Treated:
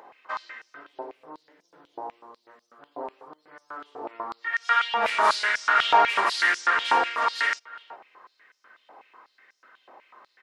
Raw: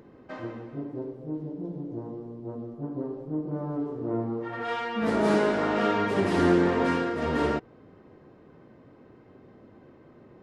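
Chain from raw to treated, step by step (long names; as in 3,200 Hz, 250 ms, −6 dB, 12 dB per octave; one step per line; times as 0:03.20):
far-end echo of a speakerphone 370 ms, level −21 dB
high-pass on a step sequencer 8.1 Hz 810–5,700 Hz
level +5.5 dB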